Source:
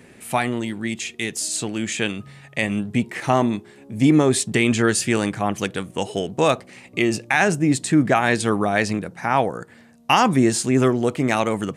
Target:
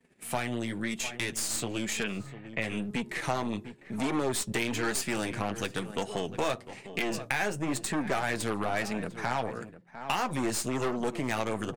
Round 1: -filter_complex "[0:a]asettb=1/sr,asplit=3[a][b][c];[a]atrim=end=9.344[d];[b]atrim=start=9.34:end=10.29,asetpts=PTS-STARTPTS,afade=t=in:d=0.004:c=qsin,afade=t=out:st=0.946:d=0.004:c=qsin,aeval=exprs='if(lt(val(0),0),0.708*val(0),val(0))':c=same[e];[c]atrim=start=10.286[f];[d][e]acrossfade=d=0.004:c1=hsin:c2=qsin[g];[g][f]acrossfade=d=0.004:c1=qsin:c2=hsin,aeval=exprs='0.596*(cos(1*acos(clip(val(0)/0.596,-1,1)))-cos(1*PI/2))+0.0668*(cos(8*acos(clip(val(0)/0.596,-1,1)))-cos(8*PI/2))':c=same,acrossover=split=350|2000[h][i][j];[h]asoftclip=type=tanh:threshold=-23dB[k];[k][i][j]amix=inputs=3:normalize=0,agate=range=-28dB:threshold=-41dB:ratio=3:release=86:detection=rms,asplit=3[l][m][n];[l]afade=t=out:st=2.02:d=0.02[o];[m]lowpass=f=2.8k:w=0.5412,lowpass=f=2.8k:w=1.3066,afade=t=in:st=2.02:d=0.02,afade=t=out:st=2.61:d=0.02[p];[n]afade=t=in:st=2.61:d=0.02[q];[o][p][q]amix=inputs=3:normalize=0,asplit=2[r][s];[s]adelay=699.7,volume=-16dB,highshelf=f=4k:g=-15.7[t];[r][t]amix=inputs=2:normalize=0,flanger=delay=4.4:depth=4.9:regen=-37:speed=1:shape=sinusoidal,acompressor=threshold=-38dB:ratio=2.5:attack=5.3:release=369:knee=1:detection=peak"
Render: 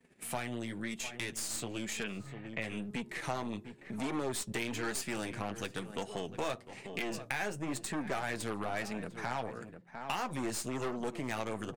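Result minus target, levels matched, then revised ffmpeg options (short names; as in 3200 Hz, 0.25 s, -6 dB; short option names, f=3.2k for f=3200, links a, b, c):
compressor: peak gain reduction +6 dB
-filter_complex "[0:a]asettb=1/sr,asplit=3[a][b][c];[a]atrim=end=9.344[d];[b]atrim=start=9.34:end=10.29,asetpts=PTS-STARTPTS,afade=t=in:d=0.004:c=qsin,afade=t=out:st=0.946:d=0.004:c=qsin,aeval=exprs='if(lt(val(0),0),0.708*val(0),val(0))':c=same[e];[c]atrim=start=10.286[f];[d][e]acrossfade=d=0.004:c1=hsin:c2=qsin[g];[g][f]acrossfade=d=0.004:c1=qsin:c2=hsin,aeval=exprs='0.596*(cos(1*acos(clip(val(0)/0.596,-1,1)))-cos(1*PI/2))+0.0668*(cos(8*acos(clip(val(0)/0.596,-1,1)))-cos(8*PI/2))':c=same,acrossover=split=350|2000[h][i][j];[h]asoftclip=type=tanh:threshold=-23dB[k];[k][i][j]amix=inputs=3:normalize=0,agate=range=-28dB:threshold=-41dB:ratio=3:release=86:detection=rms,asplit=3[l][m][n];[l]afade=t=out:st=2.02:d=0.02[o];[m]lowpass=f=2.8k:w=0.5412,lowpass=f=2.8k:w=1.3066,afade=t=in:st=2.02:d=0.02,afade=t=out:st=2.61:d=0.02[p];[n]afade=t=in:st=2.61:d=0.02[q];[o][p][q]amix=inputs=3:normalize=0,asplit=2[r][s];[s]adelay=699.7,volume=-16dB,highshelf=f=4k:g=-15.7[t];[r][t]amix=inputs=2:normalize=0,flanger=delay=4.4:depth=4.9:regen=-37:speed=1:shape=sinusoidal,acompressor=threshold=-28dB:ratio=2.5:attack=5.3:release=369:knee=1:detection=peak"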